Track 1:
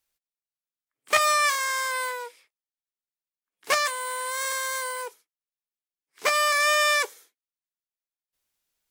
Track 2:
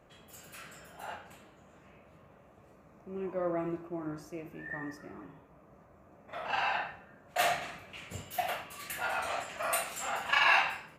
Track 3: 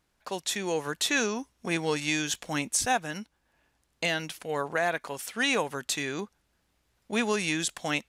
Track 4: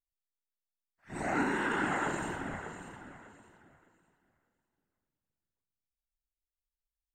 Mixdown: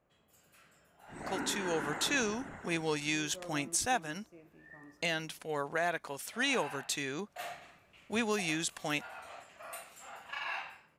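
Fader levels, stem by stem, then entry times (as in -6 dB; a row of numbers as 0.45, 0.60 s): off, -14.0 dB, -5.0 dB, -8.0 dB; off, 0.00 s, 1.00 s, 0.00 s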